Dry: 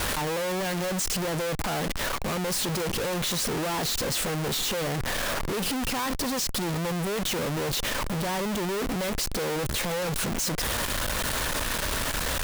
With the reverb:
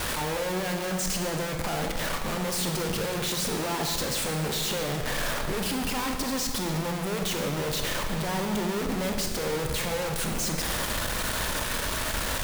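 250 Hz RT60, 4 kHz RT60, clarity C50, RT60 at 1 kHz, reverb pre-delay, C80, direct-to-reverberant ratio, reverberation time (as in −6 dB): 2.1 s, 1.4 s, 4.5 dB, 1.8 s, 22 ms, 6.0 dB, 3.0 dB, 1.9 s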